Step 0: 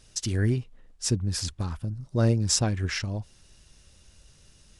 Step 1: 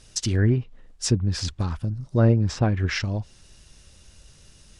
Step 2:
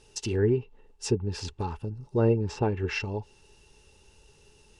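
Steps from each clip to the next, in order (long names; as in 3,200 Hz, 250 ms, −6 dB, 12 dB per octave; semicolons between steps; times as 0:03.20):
treble cut that deepens with the level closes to 2,000 Hz, closed at −20 dBFS; level +4.5 dB
hollow resonant body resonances 420/860/2,700 Hz, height 18 dB, ringing for 50 ms; level −8.5 dB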